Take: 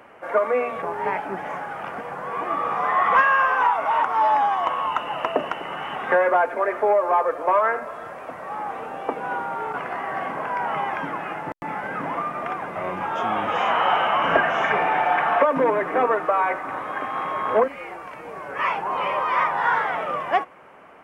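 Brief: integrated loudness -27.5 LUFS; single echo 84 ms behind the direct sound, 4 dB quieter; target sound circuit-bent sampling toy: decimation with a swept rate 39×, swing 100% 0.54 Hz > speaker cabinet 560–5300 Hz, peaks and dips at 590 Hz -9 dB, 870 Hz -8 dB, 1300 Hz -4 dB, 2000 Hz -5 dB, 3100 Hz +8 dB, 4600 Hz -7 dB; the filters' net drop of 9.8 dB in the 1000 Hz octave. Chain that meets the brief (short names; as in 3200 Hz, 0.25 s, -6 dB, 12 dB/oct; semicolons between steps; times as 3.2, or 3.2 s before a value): bell 1000 Hz -4.5 dB; echo 84 ms -4 dB; decimation with a swept rate 39×, swing 100% 0.54 Hz; speaker cabinet 560–5300 Hz, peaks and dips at 590 Hz -9 dB, 870 Hz -8 dB, 1300 Hz -4 dB, 2000 Hz -5 dB, 3100 Hz +8 dB, 4600 Hz -7 dB; gain +2 dB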